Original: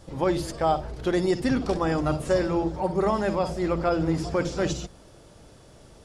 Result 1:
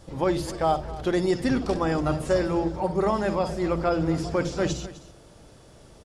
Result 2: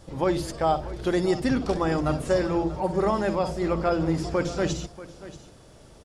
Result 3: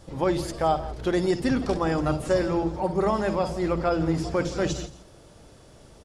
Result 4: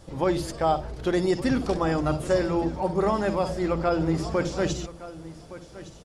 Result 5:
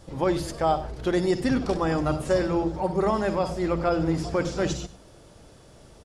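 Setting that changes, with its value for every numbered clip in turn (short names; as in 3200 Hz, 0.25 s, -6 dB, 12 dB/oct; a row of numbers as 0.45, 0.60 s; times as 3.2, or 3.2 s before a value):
echo, time: 256, 635, 166, 1165, 97 ms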